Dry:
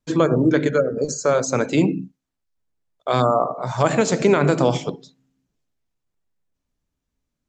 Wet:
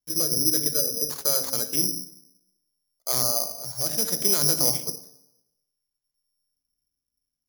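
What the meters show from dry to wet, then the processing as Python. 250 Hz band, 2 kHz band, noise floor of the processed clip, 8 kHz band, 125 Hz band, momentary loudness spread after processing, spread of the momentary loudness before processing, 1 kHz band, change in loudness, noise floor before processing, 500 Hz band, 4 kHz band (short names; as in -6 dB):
-14.5 dB, -15.5 dB, -85 dBFS, +9.0 dB, -14.0 dB, 12 LU, 8 LU, -16.0 dB, -2.5 dB, -81 dBFS, -15.0 dB, +7.5 dB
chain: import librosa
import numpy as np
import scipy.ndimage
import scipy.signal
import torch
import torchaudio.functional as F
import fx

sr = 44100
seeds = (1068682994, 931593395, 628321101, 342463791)

p1 = fx.wiener(x, sr, points=9)
p2 = fx.rotary(p1, sr, hz=0.6)
p3 = fx.rev_plate(p2, sr, seeds[0], rt60_s=0.91, hf_ratio=0.35, predelay_ms=0, drr_db=13.0)
p4 = 10.0 ** (-15.5 / 20.0) * np.tanh(p3 / 10.0 ** (-15.5 / 20.0))
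p5 = p3 + (p4 * librosa.db_to_amplitude(-10.0))
p6 = (np.kron(p5[::8], np.eye(8)[0]) * 8)[:len(p5)]
y = p6 * librosa.db_to_amplitude(-15.0)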